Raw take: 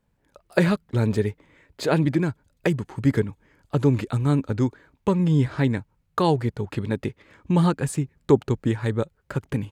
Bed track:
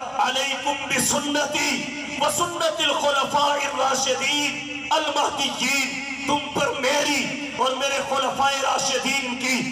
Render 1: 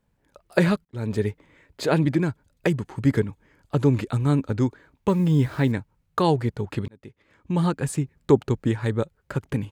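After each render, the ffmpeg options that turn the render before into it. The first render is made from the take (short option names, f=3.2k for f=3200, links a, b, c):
-filter_complex "[0:a]asettb=1/sr,asplit=3[a][b][c];[a]atrim=end=5.084[d];[b]atrim=start=5.08:end=5.72,asetpts=PTS-STARTPTS,afade=t=in:d=0.004:c=qsin,afade=t=out:st=0.636:d=0.004:c=qsin,acrusher=bits=7:mix=0:aa=0.5[e];[c]atrim=start=5.716[f];[d][e]acrossfade=d=0.004:c1=hsin:c2=qsin[g];[g][f]acrossfade=d=0.004:c1=qsin:c2=hsin,asplit=3[h][i][j];[h]atrim=end=0.85,asetpts=PTS-STARTPTS,afade=t=out:st=0.846:d=0.004:c=hsin[k];[i]atrim=start=0.85:end=6.88,asetpts=PTS-STARTPTS,afade=t=in:d=0.41,afade=t=out:st=6.026:d=0.004:c=hsin[l];[j]atrim=start=6.88,asetpts=PTS-STARTPTS,afade=t=in:d=1.05[m];[k][l][m]concat=n=3:v=0:a=1"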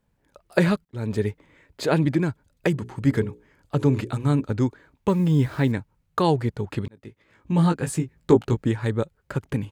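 -filter_complex "[0:a]asettb=1/sr,asplit=3[a][b][c];[a]atrim=end=2.714[d];[b]atrim=start=2.71:end=4.45,asetpts=PTS-STARTPTS,afade=t=in:d=0.004:c=qsin,afade=t=out:st=1.736:d=0.004:c=qsin,bandreject=f=60:t=h:w=6,bandreject=f=120:t=h:w=6,bandreject=f=180:t=h:w=6,bandreject=f=240:t=h:w=6,bandreject=f=300:t=h:w=6,bandreject=f=360:t=h:w=6,bandreject=f=420:t=h:w=6,bandreject=f=480:t=h:w=6,bandreject=f=540:t=h:w=6[e];[c]atrim=start=4.446[f];[d][e]acrossfade=d=0.004:c1=hsin:c2=qsin[g];[g][f]acrossfade=d=0.004:c1=qsin:c2=hsin,asettb=1/sr,asplit=3[h][i][j];[h]atrim=end=6.954[k];[i]atrim=start=6.95:end=8.64,asetpts=PTS-STARTPTS,afade=t=in:d=0.004:c=qsin,afade=t=out:st=1.686:d=0.004:c=qsin,asplit=2[l][m];[m]adelay=18,volume=-4.5dB[n];[l][n]amix=inputs=2:normalize=0,atrim=end_sample=74529[o];[j]atrim=start=8.636[p];[k][o]acrossfade=d=0.004:c1=hsin:c2=qsin[q];[q][p]acrossfade=d=0.004:c1=qsin:c2=hsin"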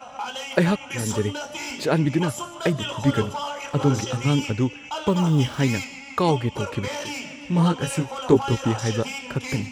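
-filter_complex "[1:a]volume=-10dB[a];[0:a][a]amix=inputs=2:normalize=0"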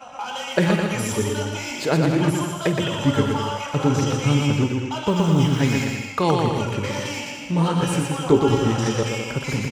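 -filter_complex "[0:a]asplit=2[a][b];[b]adelay=49,volume=-13dB[c];[a][c]amix=inputs=2:normalize=0,aecho=1:1:120|210|277.5|328.1|366.1:0.631|0.398|0.251|0.158|0.1"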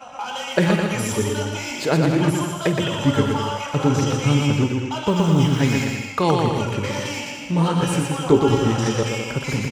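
-af "volume=1dB"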